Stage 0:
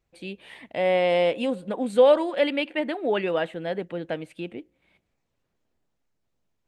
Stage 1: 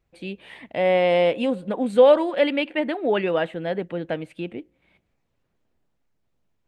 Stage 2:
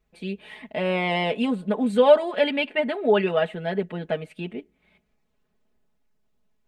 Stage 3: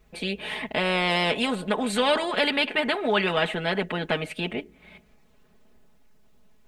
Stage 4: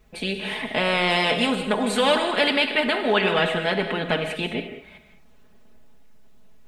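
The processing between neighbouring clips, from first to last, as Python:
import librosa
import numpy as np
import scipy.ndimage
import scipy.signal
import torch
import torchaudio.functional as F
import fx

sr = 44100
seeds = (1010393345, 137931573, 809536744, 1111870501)

y1 = fx.bass_treble(x, sr, bass_db=2, treble_db=-5)
y1 = y1 * librosa.db_to_amplitude(2.5)
y2 = y1 + 0.87 * np.pad(y1, (int(4.7 * sr / 1000.0), 0))[:len(y1)]
y2 = y2 * librosa.db_to_amplitude(-2.0)
y3 = fx.spectral_comp(y2, sr, ratio=2.0)
y3 = y3 * librosa.db_to_amplitude(-5.0)
y4 = fx.rev_gated(y3, sr, seeds[0], gate_ms=240, shape='flat', drr_db=6.0)
y4 = y4 * librosa.db_to_amplitude(2.0)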